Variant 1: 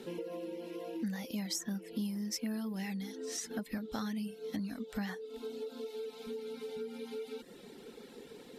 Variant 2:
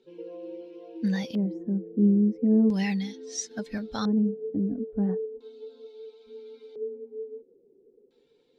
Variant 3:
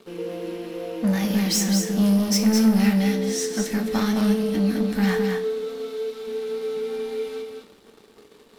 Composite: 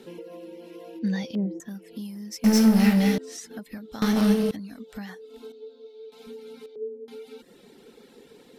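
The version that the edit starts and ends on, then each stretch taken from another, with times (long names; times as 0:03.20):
1
0:00.99–0:01.60: punch in from 2
0:02.44–0:03.18: punch in from 3
0:04.02–0:04.51: punch in from 3
0:05.52–0:06.12: punch in from 2
0:06.66–0:07.08: punch in from 2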